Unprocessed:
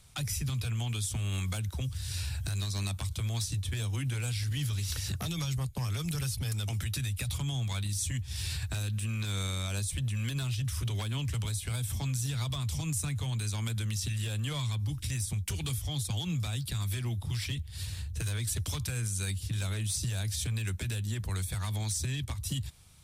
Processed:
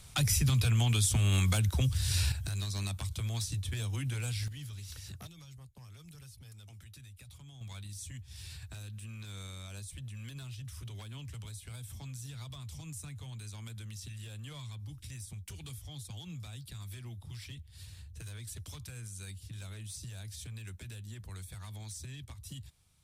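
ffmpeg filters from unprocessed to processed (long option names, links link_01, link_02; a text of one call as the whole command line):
ffmpeg -i in.wav -af "asetnsamples=nb_out_samples=441:pad=0,asendcmd='2.32 volume volume -2.5dB;4.48 volume volume -11.5dB;5.27 volume volume -19dB;7.61 volume volume -11.5dB',volume=5.5dB" out.wav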